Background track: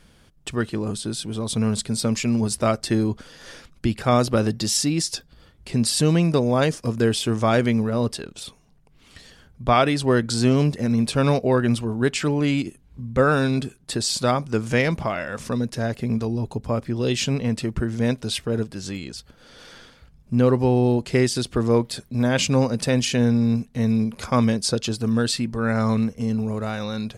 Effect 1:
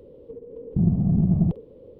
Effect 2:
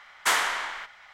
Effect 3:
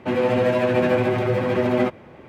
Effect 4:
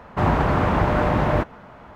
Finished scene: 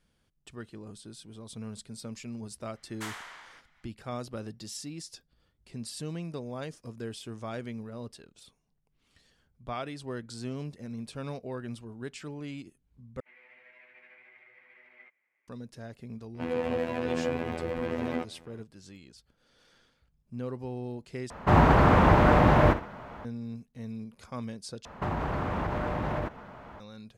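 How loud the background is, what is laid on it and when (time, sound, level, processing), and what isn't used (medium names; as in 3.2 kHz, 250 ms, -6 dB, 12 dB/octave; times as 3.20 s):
background track -18.5 dB
2.75 s: add 2 -17 dB
13.20 s: replace with 3 -16 dB + band-pass filter 2.1 kHz, Q 9.2
16.34 s: add 3 -9 dB + robot voice 82.8 Hz
21.30 s: replace with 4 + flutter echo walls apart 10.7 m, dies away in 0.3 s
24.85 s: replace with 4 -3 dB + compression, threshold -24 dBFS
not used: 1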